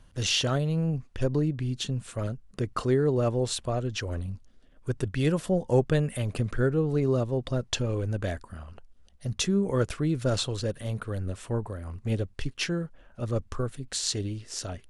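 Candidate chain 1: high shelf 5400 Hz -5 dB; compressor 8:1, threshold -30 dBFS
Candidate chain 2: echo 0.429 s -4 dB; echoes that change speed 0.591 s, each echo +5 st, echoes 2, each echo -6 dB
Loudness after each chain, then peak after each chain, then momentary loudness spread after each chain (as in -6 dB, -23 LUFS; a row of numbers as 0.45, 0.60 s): -36.0, -27.0 LUFS; -15.5, -9.5 dBFS; 6, 8 LU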